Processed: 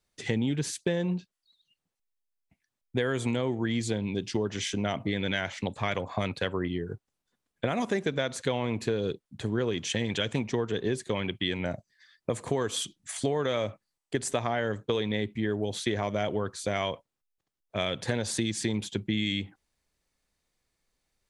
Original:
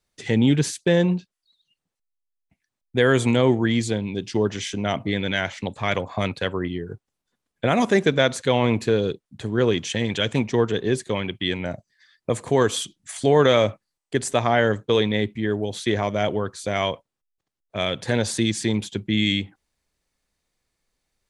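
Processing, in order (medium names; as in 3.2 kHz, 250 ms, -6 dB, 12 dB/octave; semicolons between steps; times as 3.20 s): compression 10:1, threshold -22 dBFS, peak gain reduction 11.5 dB; trim -2 dB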